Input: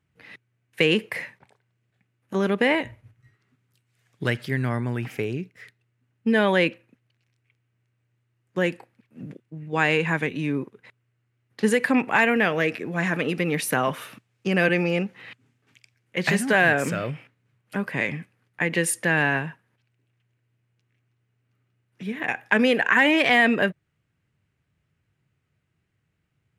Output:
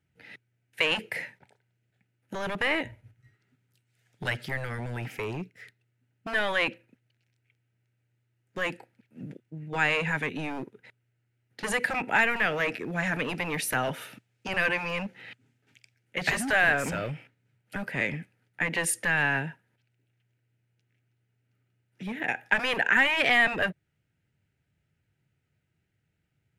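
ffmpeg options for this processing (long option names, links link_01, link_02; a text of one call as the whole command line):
ffmpeg -i in.wav -filter_complex "[0:a]acrossover=split=580[link_01][link_02];[link_01]aeval=exprs='0.0473*(abs(mod(val(0)/0.0473+3,4)-2)-1)':channel_layout=same[link_03];[link_02]asuperstop=centerf=1100:order=4:qfactor=4.6[link_04];[link_03][link_04]amix=inputs=2:normalize=0,volume=-2.5dB" out.wav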